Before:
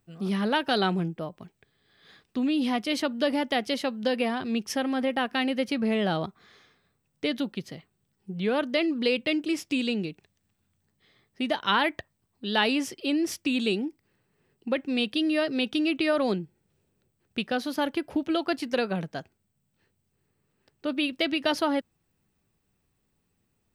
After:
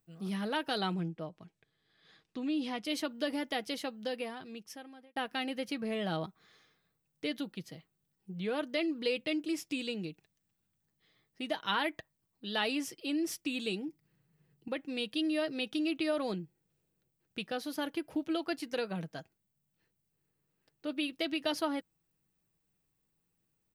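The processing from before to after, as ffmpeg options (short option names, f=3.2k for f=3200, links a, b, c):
-filter_complex "[0:a]asettb=1/sr,asplit=3[a][b][c];[a]atrim=end=0.944[d];[b]atrim=start=0.94:end=2.85,asetpts=PTS-STARTPTS,afade=t=in:d=0.004:c=qsin,afade=t=out:st=1.906:d=0.004:c=qsin,lowpass=7.2k[e];[c]atrim=start=2.846[f];[d][e]acrossfade=d=0.004:c1=hsin:c2=qsin[g];[g][f]acrossfade=d=0.004:c1=qsin:c2=hsin,asettb=1/sr,asplit=3[h][i][j];[h]atrim=end=13.884[k];[i]atrim=start=13.88:end=14.68,asetpts=PTS-STARTPTS,afade=t=in:d=0.004:c=qsin,afade=t=out:st=0.796:d=0.004:c=qsin,equalizer=f=150:t=o:w=0.77:g=13[l];[j]atrim=start=14.676[m];[k][l]acrossfade=d=0.004:c1=hsin:c2=qsin[n];[n][m]acrossfade=d=0.004:c1=qsin:c2=hsin,asplit=2[o][p];[o]atrim=end=5.16,asetpts=PTS-STARTPTS,afade=t=out:st=3.82:d=1.34[q];[p]atrim=start=5.16,asetpts=PTS-STARTPTS,afade=t=in:d=0.004:c=hsin[r];[q][r]concat=n=2:v=0:a=1,highshelf=f=7.7k:g=8.5,aecho=1:1:6.3:0.38,volume=-9dB"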